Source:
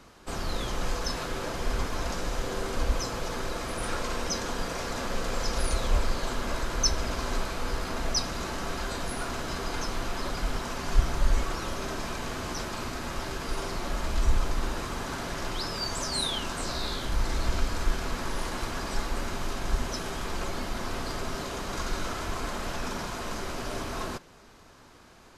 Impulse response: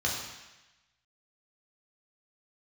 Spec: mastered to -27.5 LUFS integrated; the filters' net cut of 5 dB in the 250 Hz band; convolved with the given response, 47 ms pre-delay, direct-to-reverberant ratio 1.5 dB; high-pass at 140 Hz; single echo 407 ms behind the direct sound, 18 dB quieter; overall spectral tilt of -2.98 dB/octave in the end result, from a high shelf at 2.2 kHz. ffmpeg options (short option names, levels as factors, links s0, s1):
-filter_complex "[0:a]highpass=140,equalizer=f=250:t=o:g=-6,highshelf=f=2200:g=5.5,aecho=1:1:407:0.126,asplit=2[s0][s1];[1:a]atrim=start_sample=2205,adelay=47[s2];[s1][s2]afir=irnorm=-1:irlink=0,volume=0.316[s3];[s0][s3]amix=inputs=2:normalize=0,volume=1.12"